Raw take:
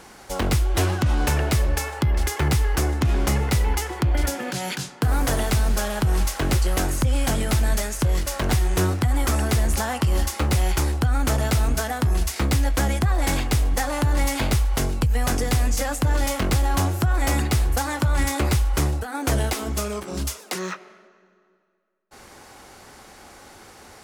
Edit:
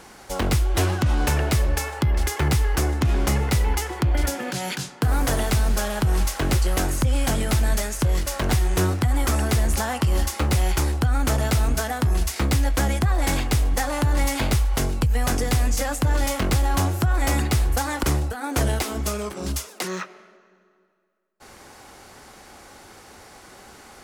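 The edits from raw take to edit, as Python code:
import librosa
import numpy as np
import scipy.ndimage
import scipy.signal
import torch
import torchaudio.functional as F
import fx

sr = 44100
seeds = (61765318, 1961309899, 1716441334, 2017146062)

y = fx.edit(x, sr, fx.cut(start_s=18.03, length_s=0.71), tone=tone)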